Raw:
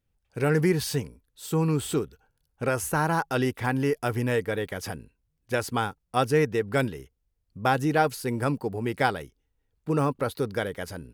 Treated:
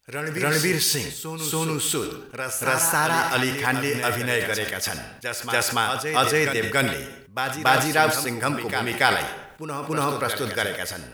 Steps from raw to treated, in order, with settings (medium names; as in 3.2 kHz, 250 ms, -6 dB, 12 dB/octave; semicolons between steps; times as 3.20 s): tilt shelf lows -8 dB; reverse echo 283 ms -7 dB; reverberation RT60 0.60 s, pre-delay 30 ms, DRR 11.5 dB; decay stretcher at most 67 dB/s; trim +3.5 dB